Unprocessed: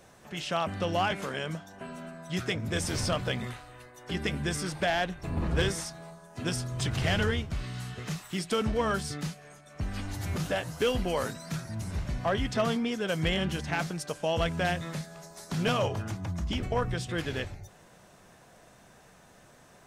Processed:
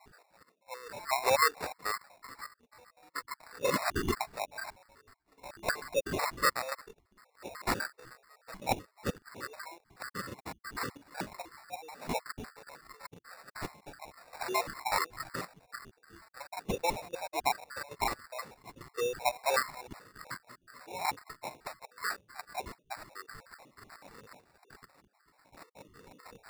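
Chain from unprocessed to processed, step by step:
time-frequency cells dropped at random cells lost 84%
high-pass filter 700 Hz 24 dB per octave
parametric band 4,500 Hz +13 dB 2.5 octaves
reversed playback
upward compression, threshold −47 dBFS
reversed playback
speed change −25%
in parallel at −8 dB: bit-depth reduction 8 bits, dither none
on the sum: gate pattern "x...xxxxx." 67 BPM −12 dB
decimation without filtering 14×

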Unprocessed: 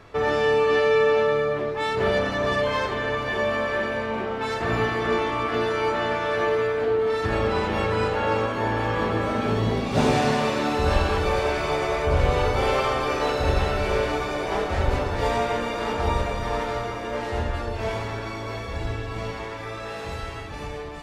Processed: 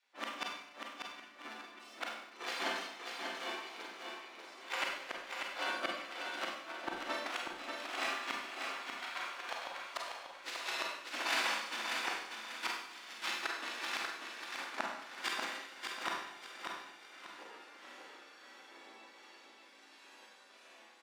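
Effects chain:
wavefolder on the positive side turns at −20 dBFS
noise gate −20 dBFS, range −37 dB
gate on every frequency bin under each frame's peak −15 dB weak
Butterworth high-pass 260 Hz 36 dB per octave
downward compressor 8 to 1, threshold −46 dBFS, peak gain reduction 18 dB
gate with flip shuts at −39 dBFS, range −35 dB
on a send: repeating echo 590 ms, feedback 32%, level −5 dB
on the sum: four-comb reverb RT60 0.78 s, combs from 32 ms, DRR −1 dB
level +16.5 dB

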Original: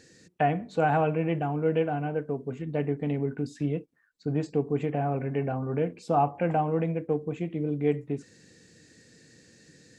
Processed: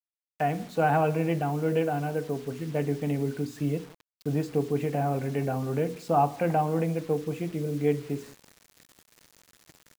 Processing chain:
mains-hum notches 60/120/180/240/300/360/420/480 Hz
automatic gain control gain up to 7 dB
on a send: repeating echo 173 ms, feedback 28%, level −23 dB
on the sum: bit reduction 7 bits
level −6 dB

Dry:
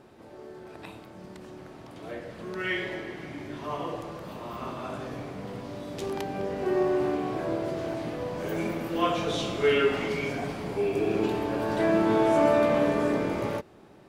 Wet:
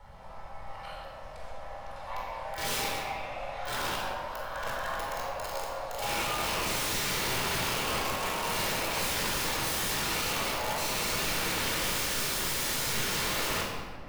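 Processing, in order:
loose part that buzzes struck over −36 dBFS, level −19 dBFS
dynamic equaliser 330 Hz, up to +4 dB, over −33 dBFS, Q 0.85
frequency shifter +430 Hz
wrap-around overflow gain 26.5 dB
background noise brown −52 dBFS
rectangular room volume 1,600 cubic metres, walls mixed, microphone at 4.4 metres
level −6.5 dB

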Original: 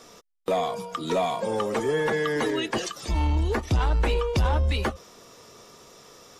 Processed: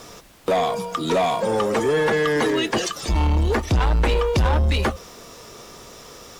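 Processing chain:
background noise pink −57 dBFS
harmonic generator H 5 −21 dB, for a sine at −15 dBFS
level +4 dB

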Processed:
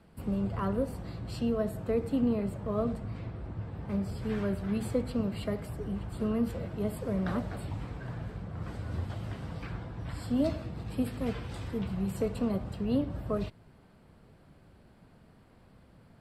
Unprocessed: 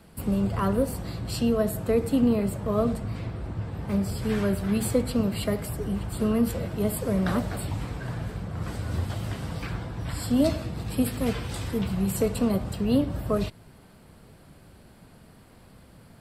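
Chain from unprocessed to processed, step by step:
low-pass filter 2,800 Hz 6 dB per octave
level −6 dB

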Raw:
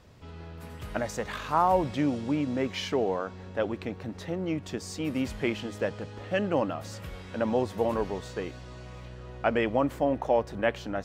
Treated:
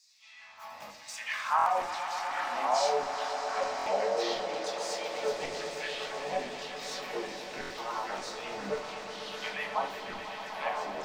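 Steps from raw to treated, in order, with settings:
downward compressor 4 to 1, threshold −32 dBFS, peak gain reduction 11.5 dB
auto-filter high-pass saw down 1.1 Hz 430–5,300 Hz
phaser with its sweep stopped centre 2,100 Hz, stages 8
pitch-shifted copies added +5 semitones −4 dB
delay with pitch and tempo change per echo 739 ms, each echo −4 semitones, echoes 2
echo that builds up and dies away 124 ms, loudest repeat 5, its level −13 dB
rectangular room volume 350 cubic metres, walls furnished, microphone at 1.5 metres
buffer that repeats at 0:01.57/0:03.77/0:07.61, samples 1,024, times 3

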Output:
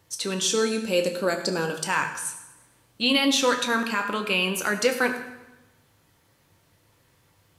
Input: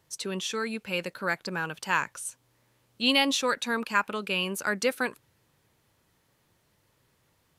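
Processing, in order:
0:00.41–0:01.84: octave-band graphic EQ 125/250/500/1,000/2,000/4,000/8,000 Hz −6/+5/+6/−4/−8/+3/+9 dB
brickwall limiter −17 dBFS, peak gain reduction 7 dB
convolution reverb RT60 1.0 s, pre-delay 5 ms, DRR 4 dB
level +4.5 dB

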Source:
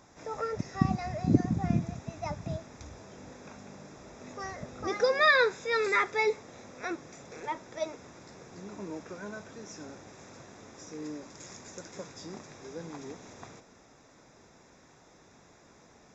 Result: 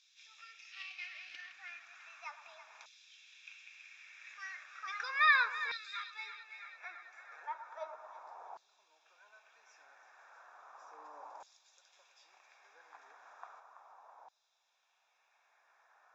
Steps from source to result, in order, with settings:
0:00.72–0:01.52: variable-slope delta modulation 32 kbit/s
notch filter 2,000 Hz, Q 5.2
in parallel at −3 dB: downward compressor, threshold −40 dBFS, peak gain reduction 22 dB
on the sum: band-pass filter sweep 2,400 Hz → 760 Hz, 0:05.38–0:06.52
on a send: echo with a time of its own for lows and highs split 1,200 Hz, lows 110 ms, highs 331 ms, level −11.5 dB
on the sum: auto-filter high-pass saw down 0.35 Hz 870–4,000 Hz
WMA 128 kbit/s 44,100 Hz

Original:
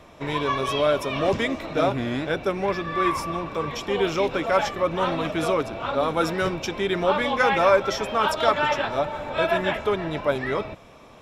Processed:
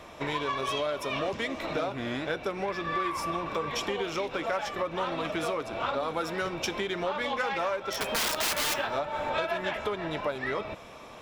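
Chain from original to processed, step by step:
phase distortion by the signal itself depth 0.077 ms
0:07.92–0:08.74: wrap-around overflow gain 19 dB
downward compressor 10 to 1, threshold −29 dBFS, peak gain reduction 16 dB
low-shelf EQ 350 Hz −7 dB
tuned comb filter 69 Hz, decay 0.47 s, harmonics odd, mix 40%
level +7.5 dB

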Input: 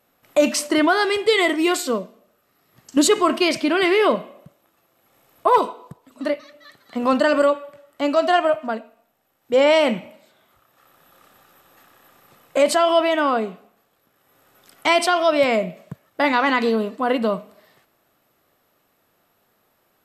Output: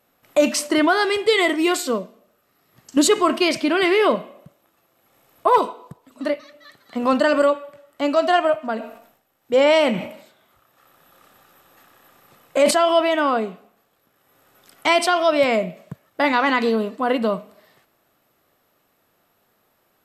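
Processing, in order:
0:08.68–0:12.71: level that may fall only so fast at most 91 dB per second

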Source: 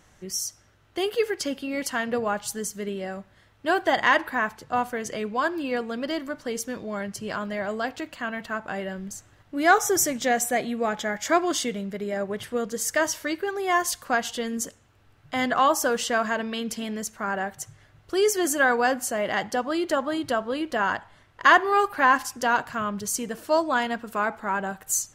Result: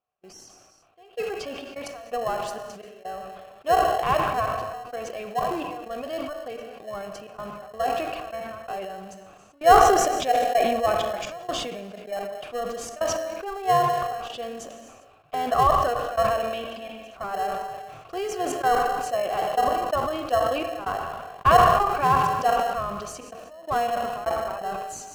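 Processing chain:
gate pattern "..xxxx.x" 128 BPM −24 dB
formant filter a
reverb whose tail is shaped and stops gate 420 ms falling, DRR 10.5 dB
in parallel at −9.5 dB: decimation without filtering 37×
on the sum: level that may fall only so fast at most 33 dB per second
level +7 dB

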